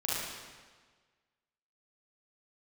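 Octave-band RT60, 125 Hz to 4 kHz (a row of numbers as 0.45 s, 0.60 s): 1.5 s, 1.5 s, 1.5 s, 1.5 s, 1.4 s, 1.3 s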